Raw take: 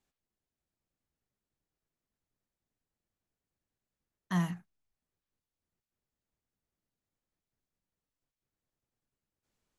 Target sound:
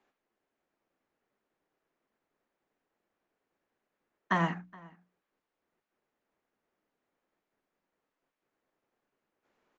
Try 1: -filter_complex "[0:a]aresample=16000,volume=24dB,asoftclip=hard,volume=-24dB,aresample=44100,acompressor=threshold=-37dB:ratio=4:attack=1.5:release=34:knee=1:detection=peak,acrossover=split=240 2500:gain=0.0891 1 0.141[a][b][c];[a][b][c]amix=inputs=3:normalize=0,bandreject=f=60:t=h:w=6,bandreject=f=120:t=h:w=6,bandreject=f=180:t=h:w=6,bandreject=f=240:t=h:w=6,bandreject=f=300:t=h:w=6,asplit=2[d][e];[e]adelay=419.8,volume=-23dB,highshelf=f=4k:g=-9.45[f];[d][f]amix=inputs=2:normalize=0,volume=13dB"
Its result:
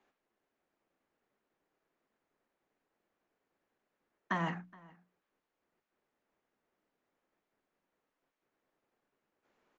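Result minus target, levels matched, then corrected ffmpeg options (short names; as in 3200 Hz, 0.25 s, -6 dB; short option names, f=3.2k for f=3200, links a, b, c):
compressor: peak gain reduction +6.5 dB
-filter_complex "[0:a]aresample=16000,volume=24dB,asoftclip=hard,volume=-24dB,aresample=44100,acompressor=threshold=-28.5dB:ratio=4:attack=1.5:release=34:knee=1:detection=peak,acrossover=split=240 2500:gain=0.0891 1 0.141[a][b][c];[a][b][c]amix=inputs=3:normalize=0,bandreject=f=60:t=h:w=6,bandreject=f=120:t=h:w=6,bandreject=f=180:t=h:w=6,bandreject=f=240:t=h:w=6,bandreject=f=300:t=h:w=6,asplit=2[d][e];[e]adelay=419.8,volume=-23dB,highshelf=f=4k:g=-9.45[f];[d][f]amix=inputs=2:normalize=0,volume=13dB"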